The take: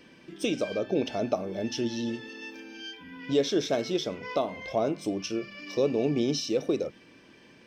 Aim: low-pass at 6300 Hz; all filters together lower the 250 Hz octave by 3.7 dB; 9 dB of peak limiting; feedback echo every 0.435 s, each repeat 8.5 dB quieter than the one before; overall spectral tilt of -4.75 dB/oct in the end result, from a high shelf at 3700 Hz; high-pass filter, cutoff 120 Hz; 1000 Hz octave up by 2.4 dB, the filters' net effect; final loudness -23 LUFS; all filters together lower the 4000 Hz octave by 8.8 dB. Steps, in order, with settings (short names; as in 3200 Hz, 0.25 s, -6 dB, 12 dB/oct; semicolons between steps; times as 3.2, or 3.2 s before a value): HPF 120 Hz; LPF 6300 Hz; bell 250 Hz -5 dB; bell 1000 Hz +5 dB; high shelf 3700 Hz -5 dB; bell 4000 Hz -8 dB; limiter -22 dBFS; feedback echo 0.435 s, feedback 38%, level -8.5 dB; gain +10.5 dB